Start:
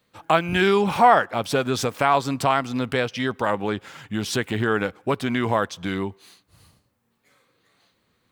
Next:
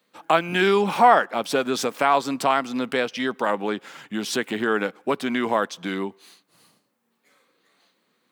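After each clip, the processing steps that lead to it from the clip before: HPF 190 Hz 24 dB/oct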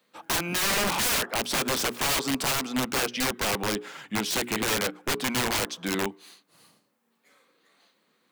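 notches 60/120/180/240/300/360/420 Hz; wrapped overs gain 20 dB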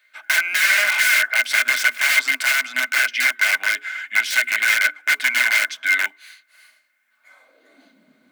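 high-pass sweep 1800 Hz -> 93 Hz, 7.07–8.25; modulation noise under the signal 30 dB; small resonant body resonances 260/620/1500/2100 Hz, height 17 dB, ringing for 50 ms; gain +2 dB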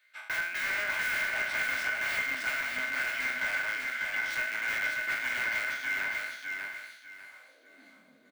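spectral trails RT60 0.65 s; de-esser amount 85%; feedback echo 0.596 s, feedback 26%, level -4 dB; gain -8 dB

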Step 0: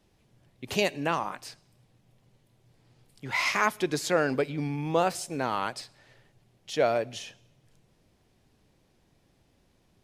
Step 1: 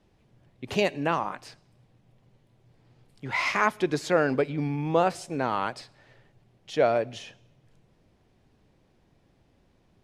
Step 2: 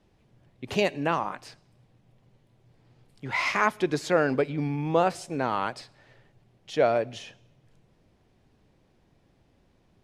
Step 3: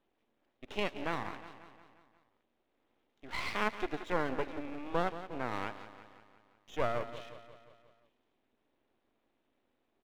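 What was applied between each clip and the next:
Bessel low-pass 12000 Hz; high shelf 3800 Hz -9.5 dB; gain +2.5 dB
nothing audible
brick-wall FIR band-pass 210–3900 Hz; feedback echo 0.177 s, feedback 57%, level -12.5 dB; half-wave rectifier; gain -6.5 dB

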